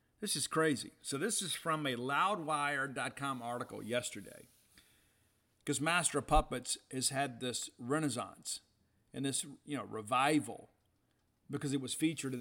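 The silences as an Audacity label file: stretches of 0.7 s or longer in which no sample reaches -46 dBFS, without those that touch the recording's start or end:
4.780000	5.670000	silence
10.600000	11.500000	silence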